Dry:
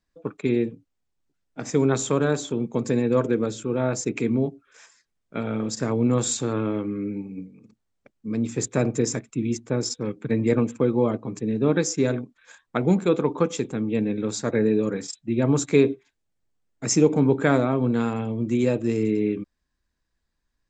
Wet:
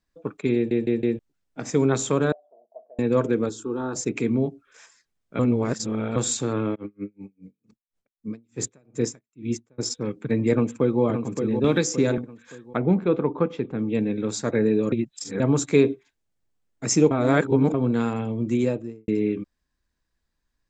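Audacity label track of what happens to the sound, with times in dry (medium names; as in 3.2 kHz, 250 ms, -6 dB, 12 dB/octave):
0.550000	0.550000	stutter in place 0.16 s, 4 plays
2.320000	2.990000	Butterworth band-pass 660 Hz, Q 7.4
3.490000	3.960000	static phaser centre 590 Hz, stages 6
5.390000	6.160000	reverse
6.740000	9.780000	logarithmic tremolo 5.7 Hz -> 1.7 Hz, depth 40 dB
10.520000	11.020000	echo throw 570 ms, feedback 40%, level -6.5 dB
11.640000	12.180000	three bands compressed up and down depth 70%
12.760000	13.790000	distance through air 360 m
14.920000	15.400000	reverse
17.110000	17.740000	reverse
18.530000	19.080000	studio fade out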